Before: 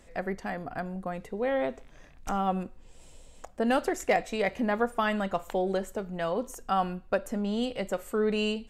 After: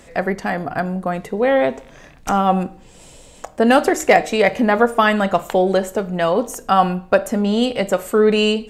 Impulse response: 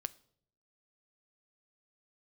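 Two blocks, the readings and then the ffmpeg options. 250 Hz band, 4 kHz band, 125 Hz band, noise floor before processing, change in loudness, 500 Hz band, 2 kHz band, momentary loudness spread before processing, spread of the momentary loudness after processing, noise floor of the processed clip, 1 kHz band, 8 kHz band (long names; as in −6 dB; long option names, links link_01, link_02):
+12.0 dB, +13.0 dB, +12.0 dB, −53 dBFS, +12.5 dB, +13.0 dB, +13.0 dB, 9 LU, 9 LU, −45 dBFS, +12.5 dB, +13.0 dB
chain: -filter_complex "[0:a]highpass=frequency=77:poles=1,bandreject=frequency=154.6:width_type=h:width=4,bandreject=frequency=309.2:width_type=h:width=4,bandreject=frequency=463.8:width_type=h:width=4,bandreject=frequency=618.4:width_type=h:width=4,bandreject=frequency=773:width_type=h:width=4,bandreject=frequency=927.6:width_type=h:width=4,bandreject=frequency=1082.2:width_type=h:width=4,asplit=2[link_01][link_02];[1:a]atrim=start_sample=2205[link_03];[link_02][link_03]afir=irnorm=-1:irlink=0,volume=10.5dB[link_04];[link_01][link_04]amix=inputs=2:normalize=0,volume=1.5dB"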